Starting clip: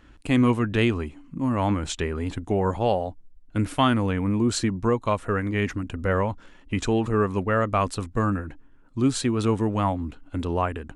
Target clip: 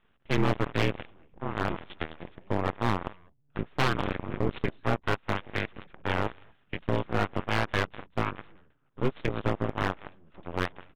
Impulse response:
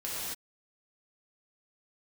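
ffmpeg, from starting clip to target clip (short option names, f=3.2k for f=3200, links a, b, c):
-filter_complex "[0:a]lowshelf=f=67:g=-11,afreqshift=-80,asplit=2[a][b];[b]acompressor=threshold=-37dB:ratio=5,volume=-1dB[c];[a][c]amix=inputs=2:normalize=0,asplit=2[d][e];[e]adelay=198.3,volume=-9dB,highshelf=f=4k:g=-4.46[f];[d][f]amix=inputs=2:normalize=0,aeval=exprs='0.562*(cos(1*acos(clip(val(0)/0.562,-1,1)))-cos(1*PI/2))+0.0178*(cos(3*acos(clip(val(0)/0.562,-1,1)))-cos(3*PI/2))+0.00355*(cos(4*acos(clip(val(0)/0.562,-1,1)))-cos(4*PI/2))+0.00708*(cos(5*acos(clip(val(0)/0.562,-1,1)))-cos(5*PI/2))+0.0891*(cos(7*acos(clip(val(0)/0.562,-1,1)))-cos(7*PI/2))':c=same,aeval=exprs='abs(val(0))':c=same,aresample=8000,aresample=44100,acontrast=89,volume=9dB,asoftclip=hard,volume=-9dB,volume=-6dB"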